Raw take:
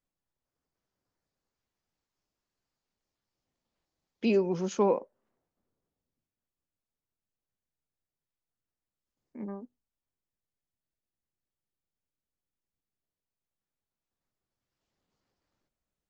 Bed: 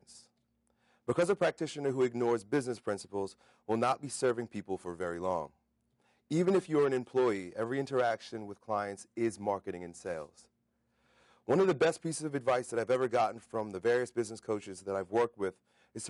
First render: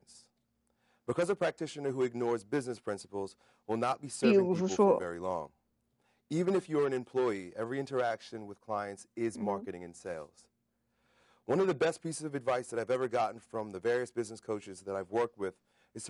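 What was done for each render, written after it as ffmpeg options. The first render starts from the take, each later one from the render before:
ffmpeg -i in.wav -i bed.wav -filter_complex "[1:a]volume=-2dB[link_01];[0:a][link_01]amix=inputs=2:normalize=0" out.wav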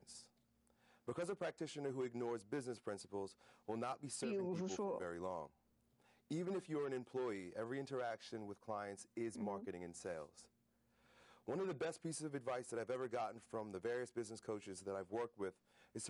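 ffmpeg -i in.wav -af "alimiter=level_in=1dB:limit=-24dB:level=0:latency=1:release=20,volume=-1dB,acompressor=threshold=-48dB:ratio=2" out.wav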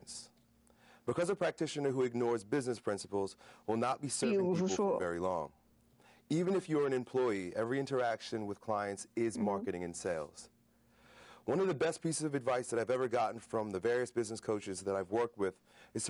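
ffmpeg -i in.wav -af "volume=10dB" out.wav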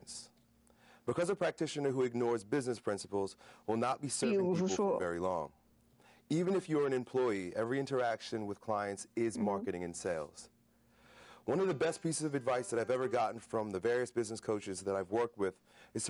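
ffmpeg -i in.wav -filter_complex "[0:a]asettb=1/sr,asplit=3[link_01][link_02][link_03];[link_01]atrim=end=11.554[link_04];[link_02]atrim=start=11.55:end=13.2,asetpts=PTS-STARTPTS,afade=type=in:duration=0.004:curve=qsin,afade=type=out:start_time=1.646:duration=0.004:curve=qsin,bandreject=frequency=198.8:width_type=h:width=4,bandreject=frequency=397.6:width_type=h:width=4,bandreject=frequency=596.4:width_type=h:width=4,bandreject=frequency=795.2:width_type=h:width=4,bandreject=frequency=994:width_type=h:width=4,bandreject=frequency=1192.8:width_type=h:width=4,bandreject=frequency=1391.6:width_type=h:width=4,bandreject=frequency=1590.4:width_type=h:width=4,bandreject=frequency=1789.2:width_type=h:width=4,bandreject=frequency=1988:width_type=h:width=4,bandreject=frequency=2186.8:width_type=h:width=4,bandreject=frequency=2385.6:width_type=h:width=4,bandreject=frequency=2584.4:width_type=h:width=4,bandreject=frequency=2783.2:width_type=h:width=4,bandreject=frequency=2982:width_type=h:width=4,bandreject=frequency=3180.8:width_type=h:width=4,bandreject=frequency=3379.6:width_type=h:width=4,bandreject=frequency=3578.4:width_type=h:width=4,bandreject=frequency=3777.2:width_type=h:width=4,bandreject=frequency=3976:width_type=h:width=4,bandreject=frequency=4174.8:width_type=h:width=4,bandreject=frequency=4373.6:width_type=h:width=4,bandreject=frequency=4572.4:width_type=h:width=4,bandreject=frequency=4771.2:width_type=h:width=4,bandreject=frequency=4970:width_type=h:width=4,bandreject=frequency=5168.8:width_type=h:width=4,bandreject=frequency=5367.6:width_type=h:width=4,bandreject=frequency=5566.4:width_type=h:width=4,bandreject=frequency=5765.2:width_type=h:width=4,bandreject=frequency=5964:width_type=h:width=4,bandreject=frequency=6162.8:width_type=h:width=4,bandreject=frequency=6361.6:width_type=h:width=4,bandreject=frequency=6560.4:width_type=h:width=4,bandreject=frequency=6759.2:width_type=h:width=4,bandreject=frequency=6958:width_type=h:width=4,bandreject=frequency=7156.8:width_type=h:width=4,bandreject=frequency=7355.6:width_type=h:width=4[link_05];[link_03]atrim=start=13.196[link_06];[link_04][link_05]acrossfade=duration=0.004:curve1=hsin:curve2=qsin[link_07];[link_07][link_06]acrossfade=duration=0.004:curve1=qsin:curve2=hsin" out.wav

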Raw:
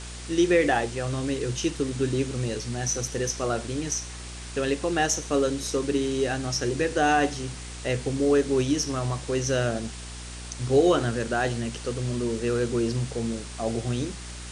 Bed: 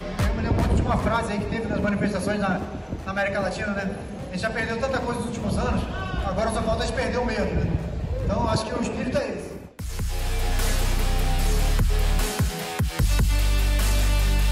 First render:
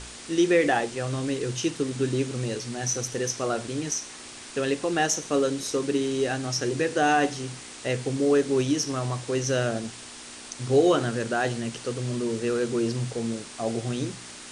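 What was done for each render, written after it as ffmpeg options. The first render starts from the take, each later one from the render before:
ffmpeg -i in.wav -af "bandreject=frequency=60:width_type=h:width=4,bandreject=frequency=120:width_type=h:width=4,bandreject=frequency=180:width_type=h:width=4" out.wav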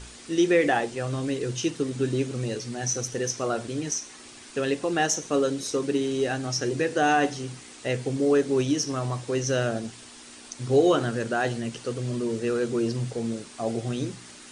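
ffmpeg -i in.wav -af "afftdn=noise_reduction=6:noise_floor=-43" out.wav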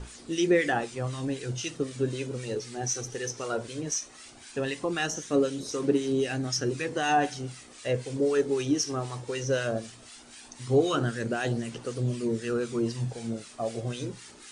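ffmpeg -i in.wav -filter_complex "[0:a]aphaser=in_gain=1:out_gain=1:delay=2.6:decay=0.35:speed=0.17:type=triangular,acrossover=split=1200[link_01][link_02];[link_01]aeval=exprs='val(0)*(1-0.7/2+0.7/2*cos(2*PI*3.9*n/s))':channel_layout=same[link_03];[link_02]aeval=exprs='val(0)*(1-0.7/2-0.7/2*cos(2*PI*3.9*n/s))':channel_layout=same[link_04];[link_03][link_04]amix=inputs=2:normalize=0" out.wav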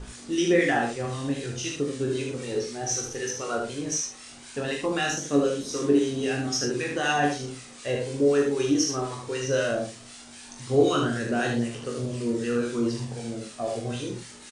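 ffmpeg -i in.wav -filter_complex "[0:a]asplit=2[link_01][link_02];[link_02]adelay=42,volume=-6.5dB[link_03];[link_01][link_03]amix=inputs=2:normalize=0,aecho=1:1:21|76:0.562|0.631" out.wav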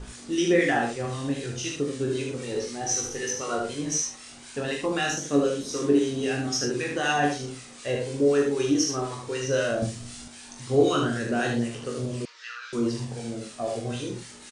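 ffmpeg -i in.wav -filter_complex "[0:a]asettb=1/sr,asplit=3[link_01][link_02][link_03];[link_01]atrim=end=2.544[link_04];[link_02]atrim=start=2.54:end=4.16,asetpts=PTS-STARTPTS,afade=type=in:duration=0.004:curve=qsin,afade=type=out:start_time=1.616:duration=0.004:curve=qsin,asplit=2[link_05][link_06];[link_06]adelay=20,volume=-5dB[link_07];[link_05][link_07]amix=inputs=2:normalize=0,atrim=end_sample=71442[link_08];[link_03]atrim=start=4.156[link_09];[link_04][link_08]acrossfade=duration=0.004:curve1=hsin:curve2=qsin[link_10];[link_10][link_09]acrossfade=duration=0.004:curve1=qsin:curve2=hsin,asettb=1/sr,asplit=3[link_11][link_12][link_13];[link_11]atrim=end=9.824[link_14];[link_12]atrim=start=9.82:end=10.28,asetpts=PTS-STARTPTS,afade=type=in:duration=0.004:curve=qsin,afade=type=out:start_time=0.456:duration=0.004:curve=qsin,bass=frequency=250:gain=14,treble=frequency=4000:gain=4[link_15];[link_13]atrim=start=10.276[link_16];[link_14][link_15]acrossfade=duration=0.004:curve1=hsin:curve2=qsin[link_17];[link_17][link_16]acrossfade=duration=0.004:curve1=qsin:curve2=hsin,asettb=1/sr,asplit=3[link_18][link_19][link_20];[link_18]atrim=end=12.254[link_21];[link_19]atrim=start=12.25:end=12.73,asetpts=PTS-STARTPTS,afade=type=in:duration=0.004:curve=qsin,afade=type=out:start_time=0.476:duration=0.004:curve=qsin,asuperpass=centerf=2600:order=8:qfactor=0.59[link_22];[link_20]atrim=start=12.726[link_23];[link_21][link_22]acrossfade=duration=0.004:curve1=hsin:curve2=qsin[link_24];[link_24][link_23]acrossfade=duration=0.004:curve1=qsin:curve2=hsin" out.wav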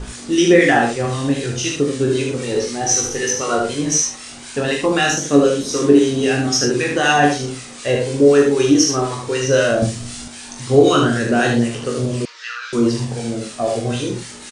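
ffmpeg -i in.wav -af "volume=10dB,alimiter=limit=-1dB:level=0:latency=1" out.wav

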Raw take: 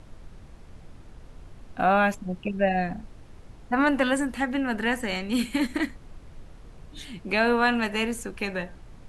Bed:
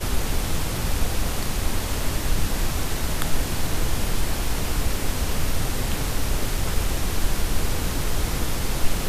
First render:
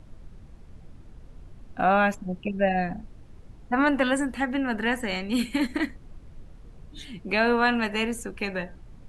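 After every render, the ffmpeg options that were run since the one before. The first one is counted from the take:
ffmpeg -i in.wav -af "afftdn=noise_reduction=6:noise_floor=-48" out.wav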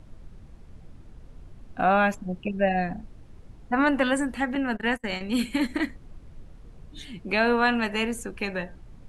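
ffmpeg -i in.wav -filter_complex "[0:a]asettb=1/sr,asplit=3[link_01][link_02][link_03];[link_01]atrim=end=4.554[link_04];[link_02]atrim=start=4.55:end=5.21,asetpts=PTS-STARTPTS,afade=type=in:duration=0.004:curve=qsin,afade=type=out:start_time=0.656:duration=0.004:curve=qsin,agate=range=-31dB:threshold=-30dB:ratio=16:release=100:detection=peak[link_05];[link_03]atrim=start=5.206[link_06];[link_04][link_05]acrossfade=duration=0.004:curve1=hsin:curve2=qsin[link_07];[link_07][link_06]acrossfade=duration=0.004:curve1=qsin:curve2=hsin" out.wav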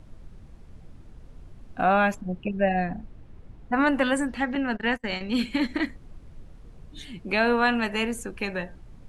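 ffmpeg -i in.wav -filter_complex "[0:a]asettb=1/sr,asplit=3[link_01][link_02][link_03];[link_01]atrim=end=2.214[link_04];[link_02]atrim=start=2.21:end=3.73,asetpts=PTS-STARTPTS,afade=type=in:duration=0.004:curve=qsin,afade=type=out:start_time=1.516:duration=0.004:curve=qsin,bass=frequency=250:gain=1,treble=frequency=4000:gain=-8[link_05];[link_03]atrim=start=3.726[link_06];[link_04][link_05]acrossfade=duration=0.004:curve1=hsin:curve2=qsin[link_07];[link_07][link_06]acrossfade=duration=0.004:curve1=qsin:curve2=hsin,asettb=1/sr,asplit=3[link_08][link_09][link_10];[link_08]atrim=end=4.284[link_11];[link_09]atrim=start=4.28:end=5.86,asetpts=PTS-STARTPTS,afade=type=in:duration=0.004:curve=qsin,afade=type=out:start_time=1.576:duration=0.004:curve=qsin,highshelf=frequency=6900:width_type=q:width=1.5:gain=-8[link_12];[link_10]atrim=start=5.856[link_13];[link_11][link_12]acrossfade=duration=0.004:curve1=hsin:curve2=qsin[link_14];[link_14][link_13]acrossfade=duration=0.004:curve1=qsin:curve2=hsin" out.wav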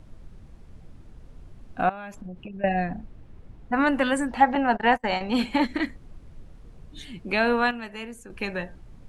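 ffmpeg -i in.wav -filter_complex "[0:a]asettb=1/sr,asplit=3[link_01][link_02][link_03];[link_01]atrim=end=1.894[link_04];[link_02]atrim=start=1.89:end=2.64,asetpts=PTS-STARTPTS,afade=type=in:duration=0.004:curve=qsin,afade=type=out:start_time=0.746:duration=0.004:curve=qsin,acompressor=threshold=-34dB:ratio=12:attack=3.2:release=140:knee=1:detection=peak[link_05];[link_03]atrim=start=2.636[link_06];[link_04][link_05]acrossfade=duration=0.004:curve1=hsin:curve2=qsin[link_07];[link_07][link_06]acrossfade=duration=0.004:curve1=qsin:curve2=hsin,asettb=1/sr,asplit=3[link_08][link_09][link_10];[link_08]atrim=end=4.314[link_11];[link_09]atrim=start=4.31:end=5.65,asetpts=PTS-STARTPTS,afade=type=in:duration=0.004:curve=qsin,afade=type=out:start_time=1.336:duration=0.004:curve=qsin,equalizer=frequency=810:width=1.5:gain=14.5[link_12];[link_10]atrim=start=5.646[link_13];[link_11][link_12]acrossfade=duration=0.004:curve1=hsin:curve2=qsin[link_14];[link_14][link_13]acrossfade=duration=0.004:curve1=qsin:curve2=hsin,asplit=3[link_15][link_16][link_17];[link_15]atrim=end=7.71,asetpts=PTS-STARTPTS,afade=type=out:start_time=7.44:duration=0.27:curve=log:silence=0.316228[link_18];[link_16]atrim=start=7.71:end=8.3,asetpts=PTS-STARTPTS,volume=-10dB[link_19];[link_17]atrim=start=8.3,asetpts=PTS-STARTPTS,afade=type=in:duration=0.27:curve=log:silence=0.316228[link_20];[link_18][link_19][link_20]concat=n=3:v=0:a=1" out.wav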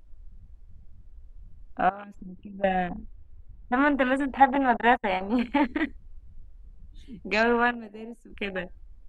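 ffmpeg -i in.wav -af "afwtdn=0.0224,equalizer=frequency=140:width=3.7:gain=-14" out.wav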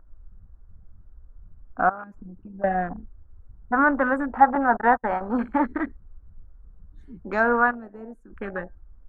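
ffmpeg -i in.wav -af "highshelf=frequency=2000:width_type=q:width=3:gain=-12.5" out.wav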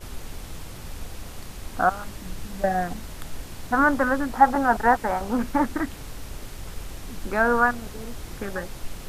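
ffmpeg -i in.wav -i bed.wav -filter_complex "[1:a]volume=-13dB[link_01];[0:a][link_01]amix=inputs=2:normalize=0" out.wav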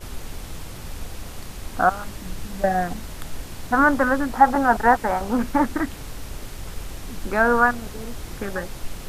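ffmpeg -i in.wav -af "volume=2.5dB,alimiter=limit=-1dB:level=0:latency=1" out.wav

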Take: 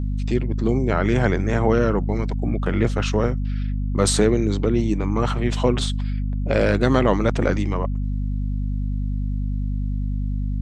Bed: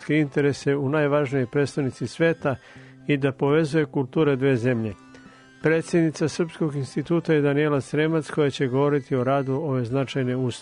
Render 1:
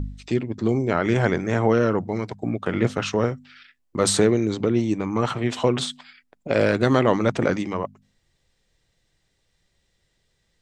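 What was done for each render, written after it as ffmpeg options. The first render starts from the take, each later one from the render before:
ffmpeg -i in.wav -af "bandreject=frequency=50:width_type=h:width=4,bandreject=frequency=100:width_type=h:width=4,bandreject=frequency=150:width_type=h:width=4,bandreject=frequency=200:width_type=h:width=4,bandreject=frequency=250:width_type=h:width=4" out.wav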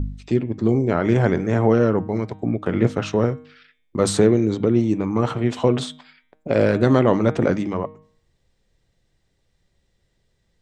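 ffmpeg -i in.wav -af "tiltshelf=frequency=970:gain=4,bandreject=frequency=155.7:width_type=h:width=4,bandreject=frequency=311.4:width_type=h:width=4,bandreject=frequency=467.1:width_type=h:width=4,bandreject=frequency=622.8:width_type=h:width=4,bandreject=frequency=778.5:width_type=h:width=4,bandreject=frequency=934.2:width_type=h:width=4,bandreject=frequency=1089.9:width_type=h:width=4,bandreject=frequency=1245.6:width_type=h:width=4,bandreject=frequency=1401.3:width_type=h:width=4,bandreject=frequency=1557:width_type=h:width=4,bandreject=frequency=1712.7:width_type=h:width=4,bandreject=frequency=1868.4:width_type=h:width=4,bandreject=frequency=2024.1:width_type=h:width=4,bandreject=frequency=2179.8:width_type=h:width=4,bandreject=frequency=2335.5:width_type=h:width=4,bandreject=frequency=2491.2:width_type=h:width=4,bandreject=frequency=2646.9:width_type=h:width=4,bandreject=frequency=2802.6:width_type=h:width=4,bandreject=frequency=2958.3:width_type=h:width=4,bandreject=frequency=3114:width_type=h:width=4,bandreject=frequency=3269.7:width_type=h:width=4,bandreject=frequency=3425.4:width_type=h:width=4,bandreject=frequency=3581.1:width_type=h:width=4,bandreject=frequency=3736.8:width_type=h:width=4,bandreject=frequency=3892.5:width_type=h:width=4" out.wav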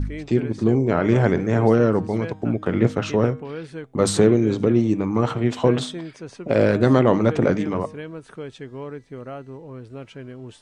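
ffmpeg -i in.wav -i bed.wav -filter_complex "[1:a]volume=-13dB[link_01];[0:a][link_01]amix=inputs=2:normalize=0" out.wav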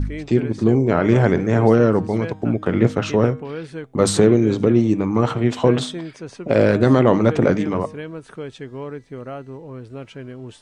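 ffmpeg -i in.wav -af "volume=2.5dB,alimiter=limit=-3dB:level=0:latency=1" out.wav

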